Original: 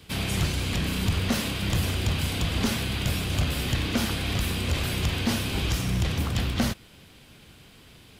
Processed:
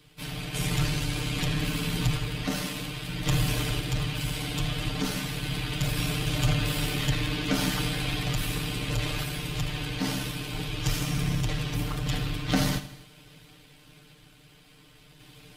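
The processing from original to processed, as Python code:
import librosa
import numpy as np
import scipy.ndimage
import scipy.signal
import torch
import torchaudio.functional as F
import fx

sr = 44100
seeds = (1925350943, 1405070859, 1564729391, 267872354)

y = fx.tremolo_random(x, sr, seeds[0], hz=3.5, depth_pct=55)
y = fx.stretch_grains(y, sr, factor=1.9, grain_ms=28.0)
y = fx.echo_feedback(y, sr, ms=79, feedback_pct=53, wet_db=-14)
y = y * librosa.db_to_amplitude(1.5)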